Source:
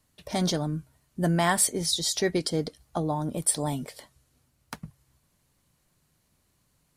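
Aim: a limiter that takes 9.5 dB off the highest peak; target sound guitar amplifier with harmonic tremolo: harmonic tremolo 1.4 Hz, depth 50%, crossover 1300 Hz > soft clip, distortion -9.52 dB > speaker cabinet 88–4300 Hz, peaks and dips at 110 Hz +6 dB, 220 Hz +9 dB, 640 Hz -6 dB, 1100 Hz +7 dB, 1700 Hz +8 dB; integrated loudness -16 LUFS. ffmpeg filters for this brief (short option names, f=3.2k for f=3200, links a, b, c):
-filter_complex "[0:a]alimiter=limit=-19dB:level=0:latency=1,acrossover=split=1300[a][b];[a]aeval=exprs='val(0)*(1-0.5/2+0.5/2*cos(2*PI*1.4*n/s))':c=same[c];[b]aeval=exprs='val(0)*(1-0.5/2-0.5/2*cos(2*PI*1.4*n/s))':c=same[d];[c][d]amix=inputs=2:normalize=0,asoftclip=threshold=-31.5dB,highpass=88,equalizer=f=110:t=q:w=4:g=6,equalizer=f=220:t=q:w=4:g=9,equalizer=f=640:t=q:w=4:g=-6,equalizer=f=1.1k:t=q:w=4:g=7,equalizer=f=1.7k:t=q:w=4:g=8,lowpass=f=4.3k:w=0.5412,lowpass=f=4.3k:w=1.3066,volume=21dB"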